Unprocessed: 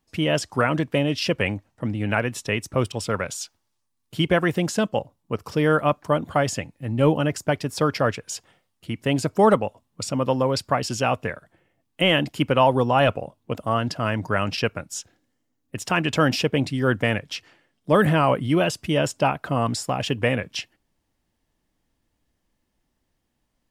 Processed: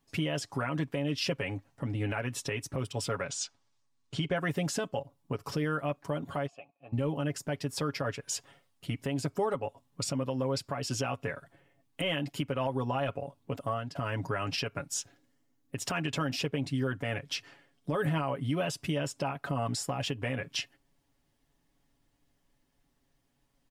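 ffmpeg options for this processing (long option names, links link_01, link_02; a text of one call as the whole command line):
ffmpeg -i in.wav -filter_complex "[0:a]asettb=1/sr,asplit=3[link_01][link_02][link_03];[link_01]atrim=end=3.254[link_04];[link_02]atrim=start=3.25:end=4.36,asetpts=PTS-STARTPTS,afade=type=in:duration=0.004:curve=qsin,afade=type=out:start_time=1.106:duration=0.004:curve=qsin,lowpass=frequency=7900:width=0.5412,lowpass=frequency=7900:width=1.3066[link_05];[link_03]atrim=start=4.356[link_06];[link_04][link_05]acrossfade=duration=0.004:curve1=hsin:curve2=qsin[link_07];[link_07][link_06]acrossfade=duration=0.004:curve1=qsin:curve2=hsin,asplit=3[link_08][link_09][link_10];[link_08]afade=type=out:start_time=6.46:duration=0.02[link_11];[link_09]asplit=3[link_12][link_13][link_14];[link_12]bandpass=frequency=730:width_type=q:width=8,volume=0dB[link_15];[link_13]bandpass=frequency=1090:width_type=q:width=8,volume=-6dB[link_16];[link_14]bandpass=frequency=2440:width_type=q:width=8,volume=-9dB[link_17];[link_15][link_16][link_17]amix=inputs=3:normalize=0,afade=type=in:start_time=6.46:duration=0.02,afade=type=out:start_time=6.92:duration=0.02[link_18];[link_10]afade=type=in:start_time=6.92:duration=0.02[link_19];[link_11][link_18][link_19]amix=inputs=3:normalize=0,asplit=2[link_20][link_21];[link_20]atrim=end=13.95,asetpts=PTS-STARTPTS,afade=type=out:start_time=13.54:duration=0.41:silence=0.112202[link_22];[link_21]atrim=start=13.95,asetpts=PTS-STARTPTS,afade=type=in:duration=0.004:curve=hsin:silence=0.112202[link_23];[link_22][link_23]concat=n=2:v=0:a=1,aecho=1:1:7.2:0.66,acompressor=threshold=-29dB:ratio=2.5,alimiter=limit=-19dB:level=0:latency=1:release=87,volume=-1.5dB" out.wav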